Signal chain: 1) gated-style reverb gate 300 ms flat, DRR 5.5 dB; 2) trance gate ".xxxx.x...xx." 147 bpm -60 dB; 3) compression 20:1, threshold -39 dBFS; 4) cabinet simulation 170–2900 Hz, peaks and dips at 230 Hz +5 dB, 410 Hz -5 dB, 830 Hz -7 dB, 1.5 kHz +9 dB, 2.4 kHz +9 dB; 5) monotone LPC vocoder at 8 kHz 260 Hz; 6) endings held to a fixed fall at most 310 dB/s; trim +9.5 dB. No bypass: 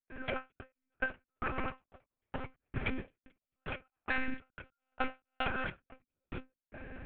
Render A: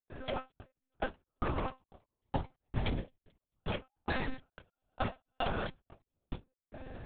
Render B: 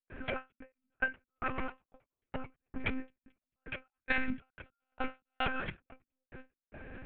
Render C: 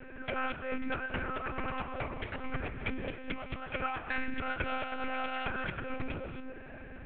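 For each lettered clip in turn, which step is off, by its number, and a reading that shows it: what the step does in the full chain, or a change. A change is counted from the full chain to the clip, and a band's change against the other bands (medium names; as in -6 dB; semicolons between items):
4, 2 kHz band -8.0 dB; 1, momentary loudness spread change +2 LU; 2, 2 kHz band -2.0 dB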